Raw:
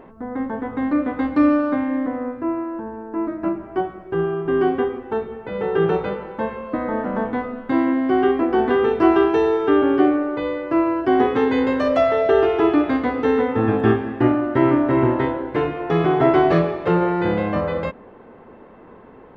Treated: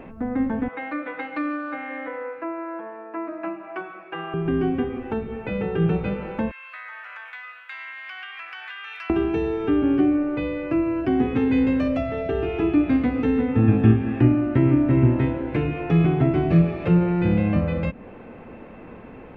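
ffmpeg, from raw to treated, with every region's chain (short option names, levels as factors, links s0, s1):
-filter_complex "[0:a]asettb=1/sr,asplit=3[s0][s1][s2];[s0]atrim=end=0.684[s3];[s1]atrim=start=0.68:end=4.34,asetpts=PTS-STARTPTS,afade=t=in:d=0.004:c=qsin,afade=t=out:st=3.656:d=0.004:c=qsin,highpass=720,lowpass=3500,aecho=1:1:6.1:0.87,atrim=end_sample=161406[s4];[s2]atrim=start=4.336[s5];[s3][s4]acrossfade=d=0.004:c1=hsin:c2=qsin[s6];[s6][s5]acrossfade=d=0.004:c1=qsin:c2=hsin,asettb=1/sr,asplit=3[s7][s8][s9];[s7]atrim=end=6.514[s10];[s8]atrim=start=6.51:end=9.1,asetpts=PTS-STARTPTS,afade=t=in:d=0.004:c=qsin,afade=t=out:st=2.586:d=0.004:c=qsin,highpass=f=1400:w=0.5412,highpass=f=1400:w=1.3066,acompressor=threshold=0.0141:ratio=6:attack=3.2:release=140:knee=1:detection=peak[s11];[s9]atrim=start=9.096[s12];[s10][s11]acrossfade=d=0.004:c1=hsin:c2=qsin[s13];[s13][s12]acrossfade=d=0.004:c1=qsin:c2=hsin,equalizer=f=400:t=o:w=0.33:g=-5,equalizer=f=1000:t=o:w=0.33:g=-5,equalizer=f=2500:t=o:w=0.33:g=12,acrossover=split=280[s14][s15];[s15]acompressor=threshold=0.0251:ratio=6[s16];[s14][s16]amix=inputs=2:normalize=0,lowshelf=f=270:g=6,volume=1.26"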